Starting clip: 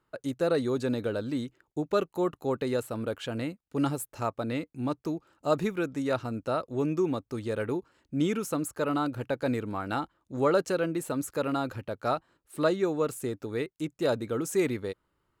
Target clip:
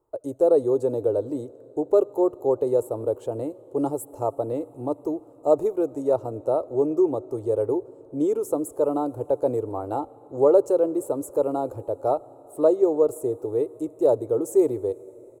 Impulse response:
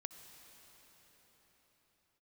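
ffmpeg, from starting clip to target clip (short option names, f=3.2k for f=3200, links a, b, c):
-filter_complex "[0:a]firequalizer=gain_entry='entry(110,0);entry(190,-19);entry(290,1);entry(410,8);entry(890,3);entry(1600,-22);entry(2400,-21);entry(4900,-16);entry(7700,-2)':delay=0.05:min_phase=1,asplit=2[a][b];[1:a]atrim=start_sample=2205[c];[b][c]afir=irnorm=-1:irlink=0,volume=-8dB[d];[a][d]amix=inputs=2:normalize=0"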